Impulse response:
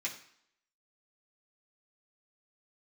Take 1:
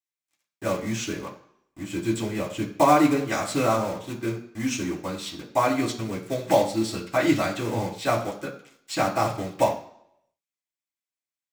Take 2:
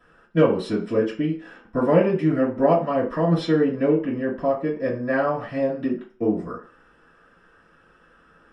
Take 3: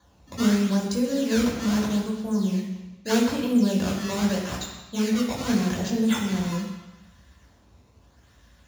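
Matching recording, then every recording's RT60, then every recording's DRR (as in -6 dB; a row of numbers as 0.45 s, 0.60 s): 1; 0.65 s, 0.45 s, 1.1 s; -5.5 dB, -11.5 dB, -4.0 dB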